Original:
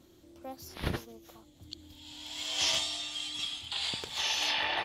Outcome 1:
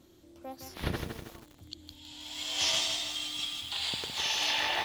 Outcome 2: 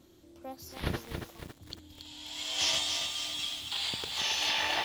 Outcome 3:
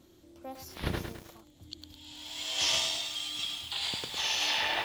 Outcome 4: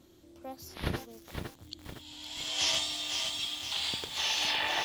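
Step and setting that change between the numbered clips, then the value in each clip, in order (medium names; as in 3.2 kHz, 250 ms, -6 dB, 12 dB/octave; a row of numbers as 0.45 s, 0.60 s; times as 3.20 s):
bit-crushed delay, time: 160 ms, 278 ms, 105 ms, 511 ms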